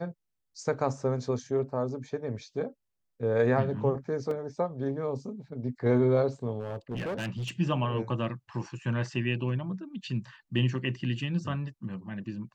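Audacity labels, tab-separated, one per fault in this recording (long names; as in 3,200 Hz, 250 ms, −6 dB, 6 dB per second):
4.310000	4.310000	drop-out 2.6 ms
6.590000	7.500000	clipping −30 dBFS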